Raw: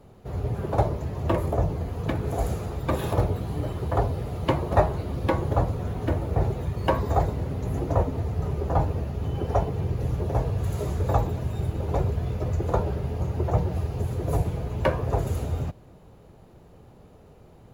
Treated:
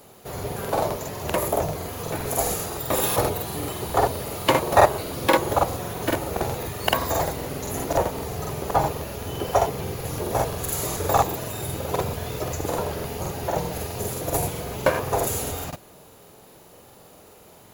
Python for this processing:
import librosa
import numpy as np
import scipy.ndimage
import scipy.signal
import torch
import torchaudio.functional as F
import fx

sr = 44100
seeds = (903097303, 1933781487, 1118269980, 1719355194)

y = fx.riaa(x, sr, side='recording')
y = fx.buffer_crackle(y, sr, first_s=0.34, period_s=0.13, block=2048, kind='repeat')
y = y * librosa.db_to_amplitude(6.5)